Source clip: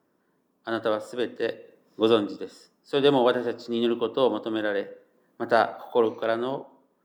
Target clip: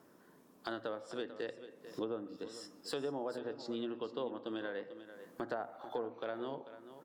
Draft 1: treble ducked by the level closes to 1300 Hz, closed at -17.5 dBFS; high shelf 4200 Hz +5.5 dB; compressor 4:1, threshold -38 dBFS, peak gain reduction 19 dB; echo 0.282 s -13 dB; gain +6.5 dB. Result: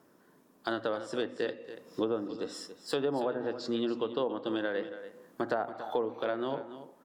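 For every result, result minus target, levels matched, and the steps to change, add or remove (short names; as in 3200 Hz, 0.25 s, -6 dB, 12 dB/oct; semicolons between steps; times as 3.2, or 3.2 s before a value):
compressor: peak gain reduction -8 dB; echo 0.161 s early
change: compressor 4:1, threshold -48.5 dBFS, peak gain reduction 27 dB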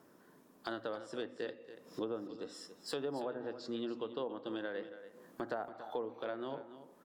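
echo 0.161 s early
change: echo 0.443 s -13 dB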